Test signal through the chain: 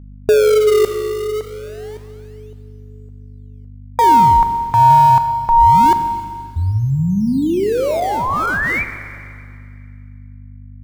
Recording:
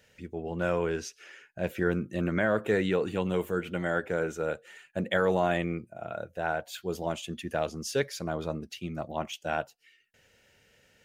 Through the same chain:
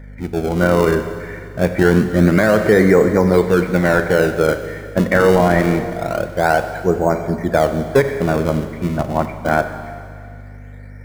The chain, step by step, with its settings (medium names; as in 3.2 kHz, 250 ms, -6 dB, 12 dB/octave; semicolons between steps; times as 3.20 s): brick-wall FIR low-pass 2.4 kHz; in parallel at -9 dB: decimation with a swept rate 31×, swing 160% 0.25 Hz; on the sum: hum 50 Hz, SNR 20 dB; Schroeder reverb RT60 2.2 s, combs from 30 ms, DRR 9 dB; loudness maximiser +15 dB; trim -1 dB